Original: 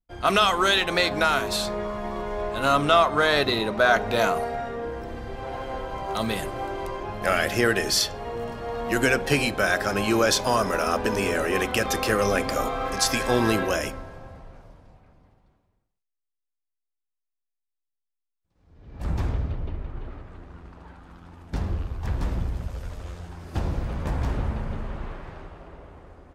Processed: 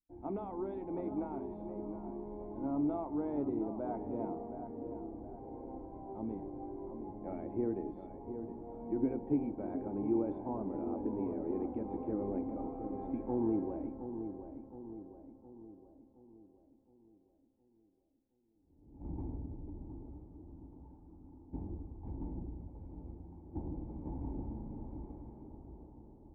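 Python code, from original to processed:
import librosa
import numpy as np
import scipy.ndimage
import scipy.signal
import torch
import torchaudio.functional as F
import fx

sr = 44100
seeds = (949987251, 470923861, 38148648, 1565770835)

y = fx.formant_cascade(x, sr, vowel='u')
y = fx.echo_filtered(y, sr, ms=717, feedback_pct=51, hz=1700.0, wet_db=-9)
y = y * 10.0 ** (-2.0 / 20.0)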